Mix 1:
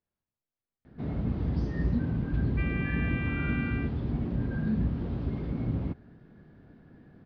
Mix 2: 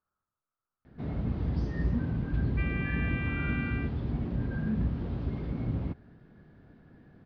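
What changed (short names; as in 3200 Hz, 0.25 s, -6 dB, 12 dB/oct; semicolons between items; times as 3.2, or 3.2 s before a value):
speech: add synth low-pass 1300 Hz, resonance Q 8.9; master: add bell 260 Hz -2.5 dB 2 oct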